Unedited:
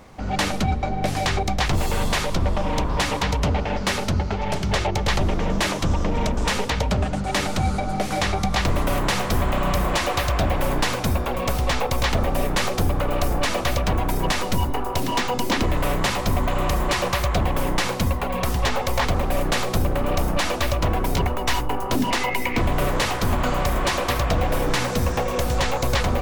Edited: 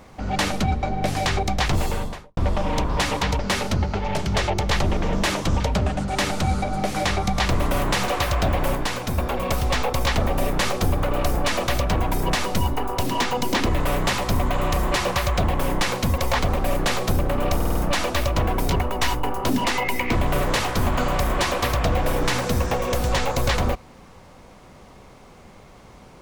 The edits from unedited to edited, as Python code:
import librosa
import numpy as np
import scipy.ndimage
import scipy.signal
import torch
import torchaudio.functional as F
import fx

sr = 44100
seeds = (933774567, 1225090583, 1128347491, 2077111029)

y = fx.studio_fade_out(x, sr, start_s=1.77, length_s=0.6)
y = fx.edit(y, sr, fx.cut(start_s=3.39, length_s=0.37),
    fx.cut(start_s=5.97, length_s=0.79),
    fx.cut(start_s=9.24, length_s=0.81),
    fx.clip_gain(start_s=10.72, length_s=0.43, db=-3.5),
    fx.cut(start_s=18.15, length_s=0.69),
    fx.stutter(start_s=20.21, slice_s=0.05, count=5), tone=tone)